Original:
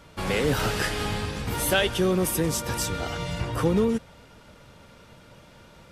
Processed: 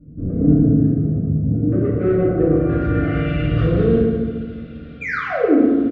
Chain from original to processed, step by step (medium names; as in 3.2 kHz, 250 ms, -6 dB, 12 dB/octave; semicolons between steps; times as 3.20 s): 0.64–2.10 s: high-pass 100 Hz 12 dB/octave; 5.01–5.59 s: painted sound fall 220–2500 Hz -20 dBFS; low-pass sweep 230 Hz -> 3.7 kHz, 1.49–3.55 s; saturation -23.5 dBFS, distortion -9 dB; Butterworth band-stop 910 Hz, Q 1.7; tape spacing loss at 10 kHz 42 dB; on a send: delay 199 ms -10.5 dB; on the sum: FDN reverb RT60 1.5 s, low-frequency decay 1.55×, high-frequency decay 0.5×, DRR -8 dB; trim +2.5 dB